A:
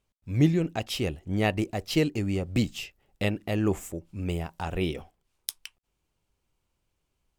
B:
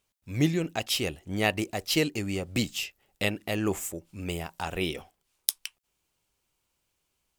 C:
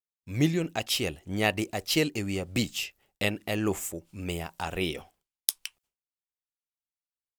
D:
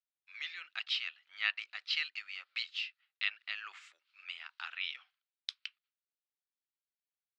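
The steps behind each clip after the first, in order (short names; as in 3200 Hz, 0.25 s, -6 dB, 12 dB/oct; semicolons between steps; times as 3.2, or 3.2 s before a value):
tilt +2 dB/oct; gain +1 dB
expander -58 dBFS
Chebyshev band-pass 1300–4300 Hz, order 3; gain -3 dB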